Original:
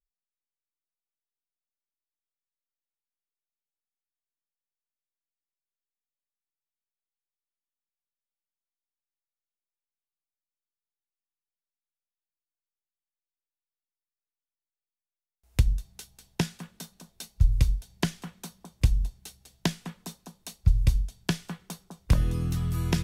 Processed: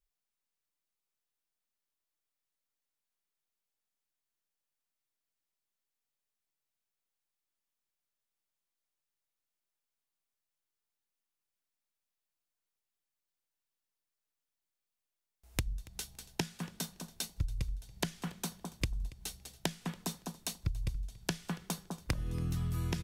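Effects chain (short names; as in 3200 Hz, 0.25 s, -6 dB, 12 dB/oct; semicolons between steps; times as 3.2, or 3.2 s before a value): compressor 16:1, threshold -35 dBFS, peak gain reduction 21.5 dB; on a send: feedback echo 0.282 s, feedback 20%, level -21.5 dB; on the sum: gain +4 dB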